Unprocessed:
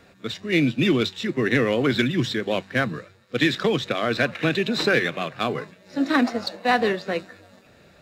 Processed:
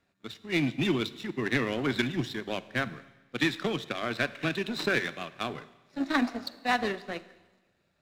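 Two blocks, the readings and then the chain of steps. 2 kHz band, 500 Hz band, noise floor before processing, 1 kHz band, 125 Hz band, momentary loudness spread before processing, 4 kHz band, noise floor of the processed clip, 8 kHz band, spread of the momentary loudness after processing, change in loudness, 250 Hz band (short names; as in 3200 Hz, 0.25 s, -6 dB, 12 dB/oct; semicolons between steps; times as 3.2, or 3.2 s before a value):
-6.5 dB, -9.5 dB, -54 dBFS, -7.0 dB, -8.0 dB, 9 LU, -7.5 dB, -73 dBFS, -5.5 dB, 12 LU, -7.5 dB, -7.5 dB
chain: power-law curve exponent 1.4; bell 490 Hz -7.5 dB 0.24 oct; Schroeder reverb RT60 1.2 s, combs from 33 ms, DRR 16 dB; gain -3.5 dB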